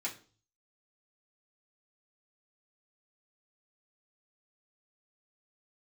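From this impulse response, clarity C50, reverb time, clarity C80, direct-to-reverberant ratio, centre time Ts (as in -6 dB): 12.5 dB, 0.40 s, 17.5 dB, -6.0 dB, 15 ms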